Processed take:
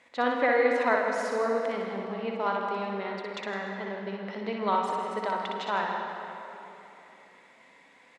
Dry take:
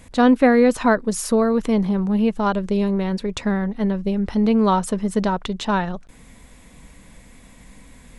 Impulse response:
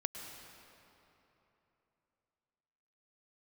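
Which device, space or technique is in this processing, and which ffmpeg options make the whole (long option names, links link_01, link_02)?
station announcement: -filter_complex "[0:a]highpass=500,lowpass=3900,equalizer=frequency=2000:width_type=o:width=0.25:gain=6,aecho=1:1:61.22|160.3:0.631|0.282[link_01];[1:a]atrim=start_sample=2205[link_02];[link_01][link_02]afir=irnorm=-1:irlink=0,volume=-6.5dB"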